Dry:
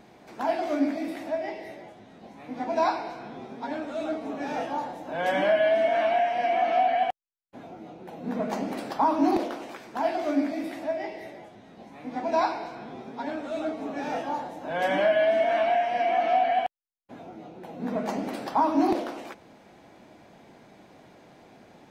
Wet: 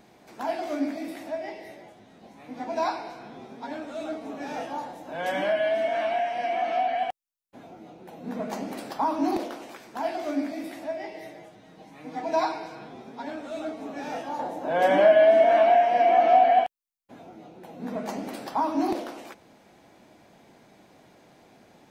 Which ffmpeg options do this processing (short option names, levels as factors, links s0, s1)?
-filter_complex "[0:a]asettb=1/sr,asplit=3[s0][s1][s2];[s0]atrim=end=11.144[s3];[s1]atrim=start=11.14:end=12.88,asetpts=PTS-STARTPTS,afade=t=in:d=0.004:c=qsin,afade=t=out:st=1.736:d=0.004:c=qsin,aecho=1:1:6.4:0.65,atrim=end_sample=76734[s4];[s2]atrim=start=12.876[s5];[s3][s4]acrossfade=d=0.004:c1=hsin:c2=qsin[s6];[s6][s5]acrossfade=d=0.004:c1=qsin:c2=hsin,asettb=1/sr,asplit=3[s7][s8][s9];[s7]atrim=end=14.394[s10];[s8]atrim=start=14.39:end=16.64,asetpts=PTS-STARTPTS,afade=t=in:d=0.004:c=qsin,afade=t=out:st=2.246:d=0.004:c=qsin,equalizer=f=500:w=0.42:g=9[s11];[s9]atrim=start=16.636[s12];[s10][s11]acrossfade=d=0.004:c1=hsin:c2=qsin[s13];[s13][s12]acrossfade=d=0.004:c1=qsin:c2=hsin,highshelf=f=5500:g=7.5,volume=0.708"